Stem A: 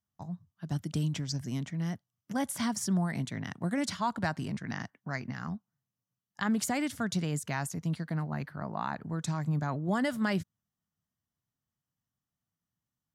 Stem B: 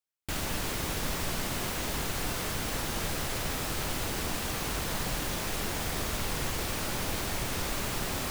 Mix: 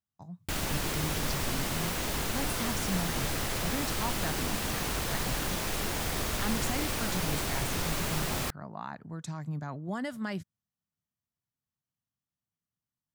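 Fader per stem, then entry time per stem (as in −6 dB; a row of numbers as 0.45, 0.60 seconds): −5.5, +0.5 decibels; 0.00, 0.20 seconds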